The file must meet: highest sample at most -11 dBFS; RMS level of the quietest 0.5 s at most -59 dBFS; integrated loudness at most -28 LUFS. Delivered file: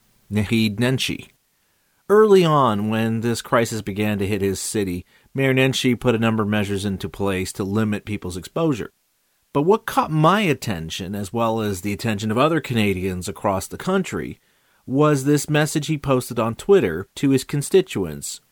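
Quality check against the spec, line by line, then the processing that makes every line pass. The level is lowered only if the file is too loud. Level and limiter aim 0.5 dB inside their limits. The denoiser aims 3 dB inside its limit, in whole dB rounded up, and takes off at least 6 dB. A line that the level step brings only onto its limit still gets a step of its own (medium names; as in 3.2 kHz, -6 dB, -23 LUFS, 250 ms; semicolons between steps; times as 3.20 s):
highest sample -4.0 dBFS: fail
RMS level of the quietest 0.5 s -66 dBFS: pass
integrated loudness -20.5 LUFS: fail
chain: trim -8 dB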